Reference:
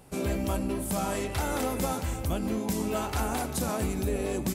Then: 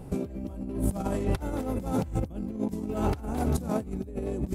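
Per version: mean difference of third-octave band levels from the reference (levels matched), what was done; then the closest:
10.0 dB: tilt shelving filter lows +8.5 dB, about 730 Hz
compressor whose output falls as the input rises −29 dBFS, ratio −0.5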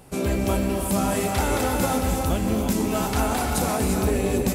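2.5 dB: reverb whose tail is shaped and stops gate 380 ms rising, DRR 2.5 dB
level +5 dB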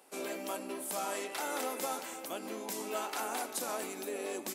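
7.0 dB: high-pass filter 270 Hz 24 dB per octave
low-shelf EQ 390 Hz −8.5 dB
level −3 dB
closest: second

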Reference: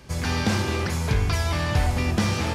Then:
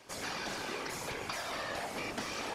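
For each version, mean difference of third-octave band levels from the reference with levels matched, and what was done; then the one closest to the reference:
6.0 dB: high-pass filter 360 Hz 12 dB per octave
downward compressor, threshold −30 dBFS, peak gain reduction 7 dB
random phases in short frames
level −5 dB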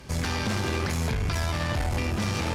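2.0 dB: brickwall limiter −20 dBFS, peak gain reduction 9.5 dB
tube saturation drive 26 dB, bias 0.6
level +5 dB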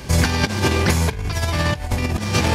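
4.5 dB: high-shelf EQ 10,000 Hz +3.5 dB
notch filter 1,300 Hz, Q 14
compressor whose output falls as the input rises −27 dBFS, ratio −0.5
level +8.5 dB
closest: second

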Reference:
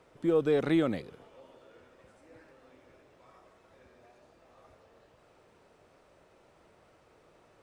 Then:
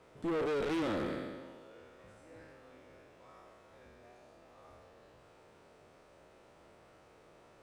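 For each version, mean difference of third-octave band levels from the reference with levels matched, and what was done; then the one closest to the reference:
7.0 dB: peak hold with a decay on every bin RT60 1.37 s
tube saturation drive 31 dB, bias 0.45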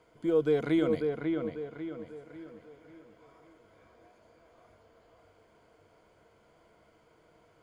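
3.5 dB: EQ curve with evenly spaced ripples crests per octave 1.8, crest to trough 9 dB
on a send: delay with a low-pass on its return 545 ms, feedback 41%, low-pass 2,700 Hz, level −4.5 dB
on the sum: level −3.5 dB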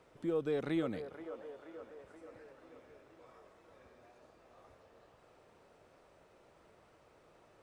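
5.0 dB: in parallel at +0.5 dB: downward compressor, threshold −46 dBFS, peak gain reduction 22 dB
on the sum: delay with a band-pass on its return 479 ms, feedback 59%, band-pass 820 Hz, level −8 dB
level −9 dB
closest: second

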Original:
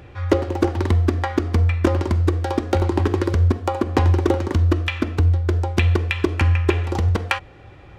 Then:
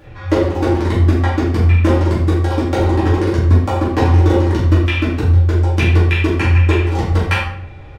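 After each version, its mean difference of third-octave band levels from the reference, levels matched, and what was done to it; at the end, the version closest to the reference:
5.0 dB: double-tracking delay 43 ms −11.5 dB
rectangular room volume 120 cubic metres, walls mixed, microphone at 2.3 metres
level −4.5 dB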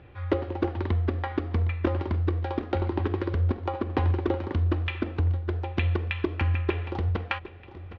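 2.5 dB: low-pass filter 3,800 Hz 24 dB per octave
on a send: repeating echo 762 ms, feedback 46%, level −16 dB
on the sum: level −8 dB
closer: second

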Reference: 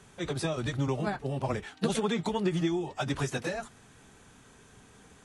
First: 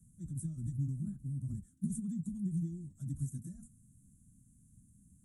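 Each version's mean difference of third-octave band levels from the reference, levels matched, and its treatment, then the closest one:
16.0 dB: inverse Chebyshev band-stop filter 420–4,900 Hz, stop band 40 dB
level −3 dB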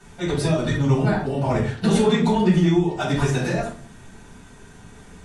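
4.5 dB: rectangular room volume 340 cubic metres, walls furnished, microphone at 7.4 metres
level −3 dB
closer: second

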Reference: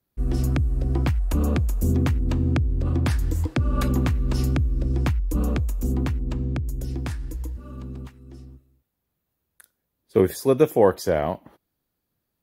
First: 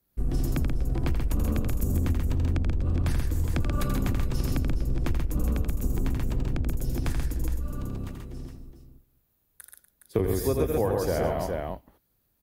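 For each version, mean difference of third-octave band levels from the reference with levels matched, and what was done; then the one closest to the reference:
9.0 dB: sub-octave generator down 2 octaves, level 0 dB
multi-tap delay 83/133/242/415 ms −5.5/−3.5/−15/−9.5 dB
downward compressor, threshold −22 dBFS, peak gain reduction 12.5 dB
high-shelf EQ 9,100 Hz +8 dB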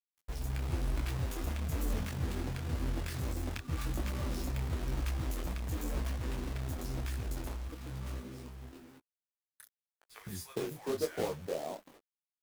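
14.5 dB: downward compressor 3 to 1, threshold −31 dBFS, peak gain reduction 14.5 dB
three-band delay without the direct sound highs, lows, mids 110/410 ms, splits 210/1,100 Hz
log-companded quantiser 4 bits
micro pitch shift up and down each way 34 cents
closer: first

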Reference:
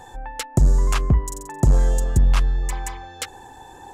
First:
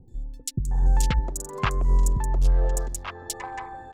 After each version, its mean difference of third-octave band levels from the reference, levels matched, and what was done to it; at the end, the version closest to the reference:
11.0 dB: adaptive Wiener filter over 15 samples
compressor whose output falls as the input rises −17 dBFS, ratio −0.5
three-band delay without the direct sound lows, highs, mids 80/710 ms, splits 310/4,000 Hz
level −1 dB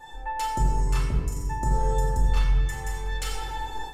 7.5 dB: rectangular room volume 1,100 cubic metres, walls mixed, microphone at 2.5 metres
automatic gain control
tuned comb filter 440 Hz, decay 0.21 s, harmonics all, mix 90%
level +4.5 dB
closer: second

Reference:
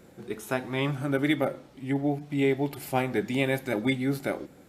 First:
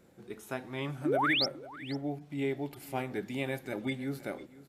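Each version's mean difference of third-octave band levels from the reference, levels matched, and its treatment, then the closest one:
2.5 dB: sound drawn into the spectrogram rise, 0:01.05–0:01.46, 270–5,800 Hz −20 dBFS
on a send: single-tap delay 498 ms −18.5 dB
on the sum: level −8.5 dB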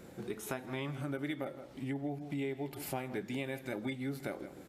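4.0 dB: single-tap delay 161 ms −17.5 dB
downward compressor 4 to 1, threshold −38 dBFS, peak gain reduction 15 dB
level +1 dB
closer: first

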